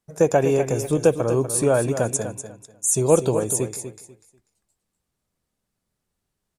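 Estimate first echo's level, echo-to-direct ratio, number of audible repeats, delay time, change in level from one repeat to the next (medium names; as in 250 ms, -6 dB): -10.0 dB, -10.0 dB, 2, 245 ms, -13.0 dB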